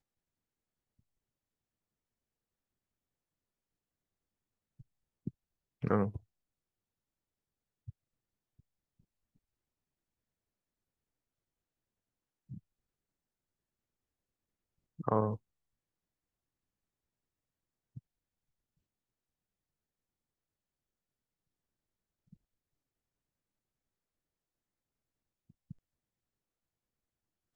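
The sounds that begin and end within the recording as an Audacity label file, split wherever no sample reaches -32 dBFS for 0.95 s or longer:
5.270000	6.160000	sound
15.000000	15.340000	sound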